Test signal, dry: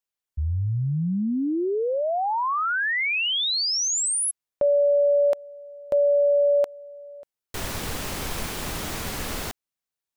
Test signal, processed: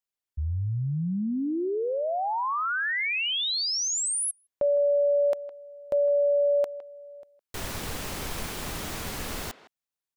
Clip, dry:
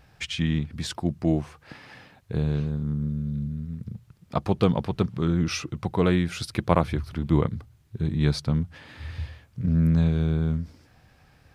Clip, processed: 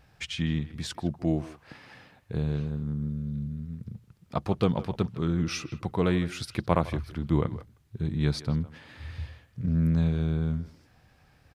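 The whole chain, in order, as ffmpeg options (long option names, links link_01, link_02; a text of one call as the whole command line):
ffmpeg -i in.wav -filter_complex "[0:a]asplit=2[link_01][link_02];[link_02]adelay=160,highpass=300,lowpass=3400,asoftclip=type=hard:threshold=-12.5dB,volume=-15dB[link_03];[link_01][link_03]amix=inputs=2:normalize=0,volume=-3.5dB" out.wav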